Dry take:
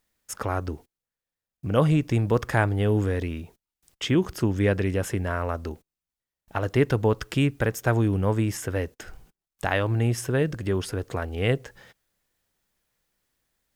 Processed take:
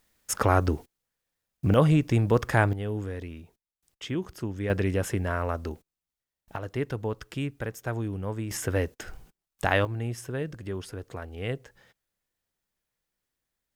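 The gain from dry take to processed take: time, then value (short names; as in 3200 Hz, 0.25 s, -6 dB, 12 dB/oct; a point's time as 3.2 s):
+6 dB
from 1.74 s 0 dB
from 2.73 s -9 dB
from 4.7 s -1 dB
from 6.56 s -9 dB
from 8.51 s +1 dB
from 9.85 s -8.5 dB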